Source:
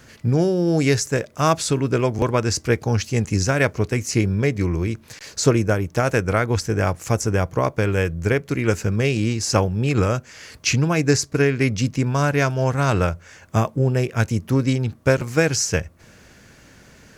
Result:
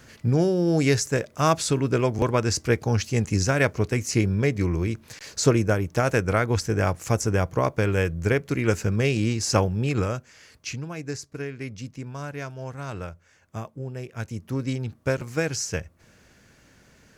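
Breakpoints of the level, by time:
0:09.71 −2.5 dB
0:10.85 −15 dB
0:13.94 −15 dB
0:14.74 −7.5 dB

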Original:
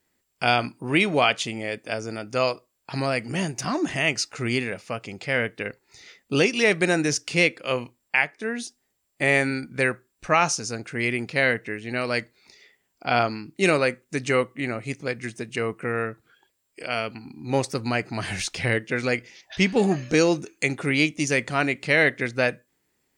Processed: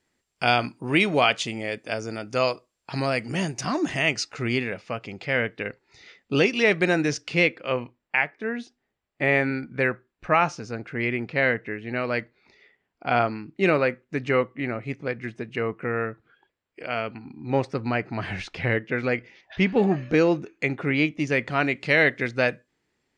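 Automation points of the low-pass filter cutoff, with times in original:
0:03.91 7,800 Hz
0:04.55 4,100 Hz
0:07.17 4,100 Hz
0:07.76 2,500 Hz
0:21.22 2,500 Hz
0:21.89 5,300 Hz

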